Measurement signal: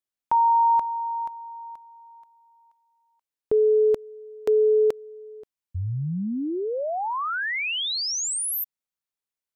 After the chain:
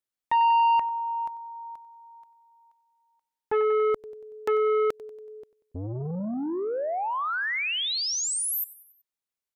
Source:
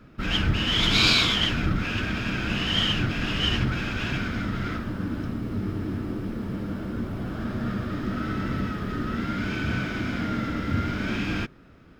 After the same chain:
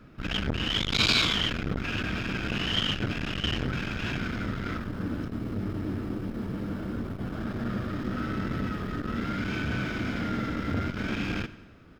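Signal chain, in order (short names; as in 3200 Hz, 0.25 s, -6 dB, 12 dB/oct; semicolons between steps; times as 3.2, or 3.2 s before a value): feedback echo 94 ms, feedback 55%, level -19.5 dB; core saturation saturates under 720 Hz; gain -1 dB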